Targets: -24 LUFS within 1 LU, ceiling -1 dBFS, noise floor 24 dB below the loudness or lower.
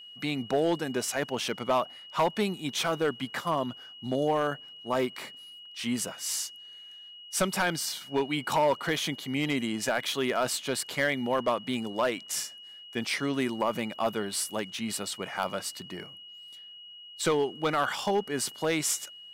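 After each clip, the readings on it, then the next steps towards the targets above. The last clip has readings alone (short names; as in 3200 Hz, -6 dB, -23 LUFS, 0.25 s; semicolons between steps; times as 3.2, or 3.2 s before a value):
clipped 0.5%; flat tops at -18.5 dBFS; steady tone 2900 Hz; tone level -45 dBFS; loudness -30.0 LUFS; peak -18.5 dBFS; loudness target -24.0 LUFS
-> clip repair -18.5 dBFS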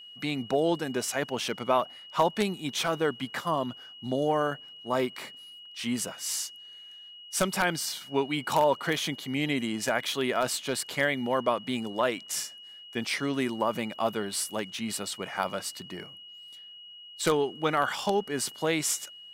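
clipped 0.0%; steady tone 2900 Hz; tone level -45 dBFS
-> notch 2900 Hz, Q 30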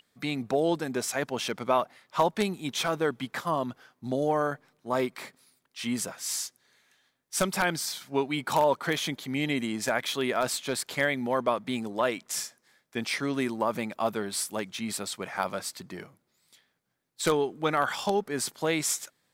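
steady tone none; loudness -29.5 LUFS; peak -9.5 dBFS; loudness target -24.0 LUFS
-> gain +5.5 dB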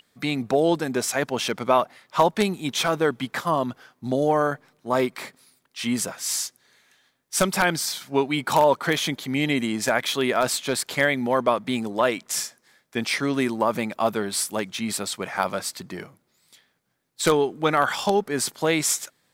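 loudness -24.0 LUFS; peak -4.0 dBFS; noise floor -69 dBFS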